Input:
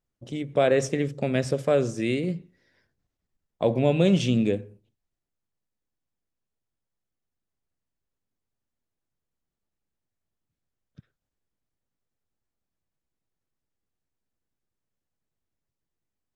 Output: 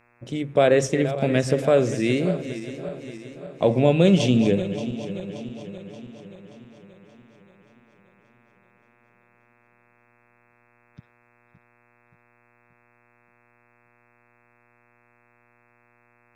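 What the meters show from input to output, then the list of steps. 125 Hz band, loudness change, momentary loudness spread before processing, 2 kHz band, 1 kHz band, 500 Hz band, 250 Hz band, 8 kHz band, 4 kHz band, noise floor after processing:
+4.0 dB, +2.5 dB, 11 LU, +4.0 dB, +4.0 dB, +4.0 dB, +4.0 dB, +4.0 dB, +4.0 dB, −62 dBFS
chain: feedback delay that plays each chunk backwards 289 ms, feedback 72%, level −12 dB
hum with harmonics 120 Hz, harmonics 22, −65 dBFS −1 dB per octave
level +3.5 dB

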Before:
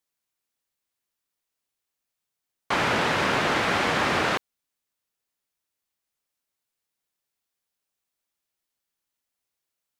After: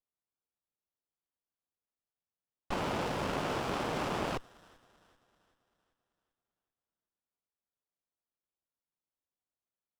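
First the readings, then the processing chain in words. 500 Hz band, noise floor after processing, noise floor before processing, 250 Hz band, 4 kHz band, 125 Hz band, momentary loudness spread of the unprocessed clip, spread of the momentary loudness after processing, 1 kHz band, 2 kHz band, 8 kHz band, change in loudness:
−8.0 dB, below −85 dBFS, −85 dBFS, −7.5 dB, −13.5 dB, −6.5 dB, 4 LU, 4 LU, −10.5 dB, −16.0 dB, −11.0 dB, −11.5 dB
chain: low-pass that shuts in the quiet parts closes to 2,900 Hz
on a send: delay with a high-pass on its return 388 ms, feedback 46%, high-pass 1,900 Hz, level −18.5 dB
on the sum: windowed peak hold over 17 samples
level −8.5 dB

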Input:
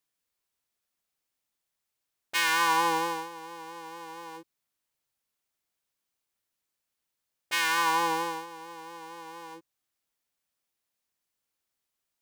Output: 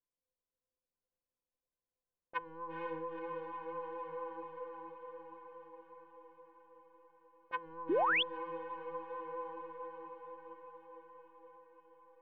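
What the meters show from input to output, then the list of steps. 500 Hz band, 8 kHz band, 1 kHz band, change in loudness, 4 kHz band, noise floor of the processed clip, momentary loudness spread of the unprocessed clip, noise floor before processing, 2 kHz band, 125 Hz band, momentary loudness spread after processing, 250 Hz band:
0.0 dB, below −40 dB, −10.5 dB, −13.5 dB, −10.0 dB, below −85 dBFS, 19 LU, −84 dBFS, −10.5 dB, −8.5 dB, 23 LU, −6.0 dB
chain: loose part that buzzes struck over −46 dBFS, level −30 dBFS
low-pass that shuts in the quiet parts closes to 770 Hz, open at −21.5 dBFS
tuned comb filter 510 Hz, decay 0.18 s, harmonics all, mix 90%
treble cut that deepens with the level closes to 310 Hz, closed at −36.5 dBFS
head-to-tape spacing loss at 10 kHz 28 dB
hum removal 168.4 Hz, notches 4
pitch vibrato 1.9 Hz 11 cents
feedback delay with all-pass diffusion 471 ms, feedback 67%, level −3.5 dB
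sound drawn into the spectrogram rise, 0:07.89–0:08.23, 290–3,600 Hz −41 dBFS
level +11 dB

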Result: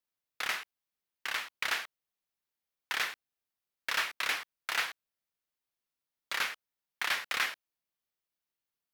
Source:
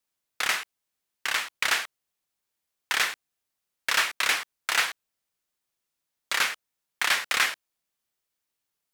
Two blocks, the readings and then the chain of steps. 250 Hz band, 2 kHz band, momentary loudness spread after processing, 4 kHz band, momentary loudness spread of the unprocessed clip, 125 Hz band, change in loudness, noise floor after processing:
−7.0 dB, −7.0 dB, 10 LU, −8.0 dB, 11 LU, can't be measured, −7.5 dB, below −85 dBFS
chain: parametric band 8,100 Hz −6 dB 0.85 octaves
level −7 dB

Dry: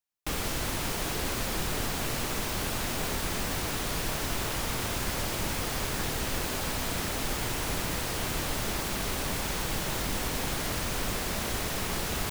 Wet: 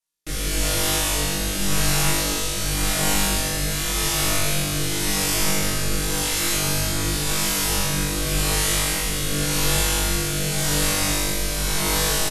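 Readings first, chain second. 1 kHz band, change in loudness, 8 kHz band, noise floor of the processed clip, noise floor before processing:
+5.5 dB, +9.5 dB, +12.5 dB, −25 dBFS, −33 dBFS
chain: sub-octave generator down 2 octaves, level 0 dB
high-shelf EQ 3,900 Hz +8 dB
comb filter 6.3 ms
rotating-speaker cabinet horn 0.9 Hz
linear-phase brick-wall low-pass 13,000 Hz
on a send: flutter between parallel walls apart 3.5 metres, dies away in 1.4 s

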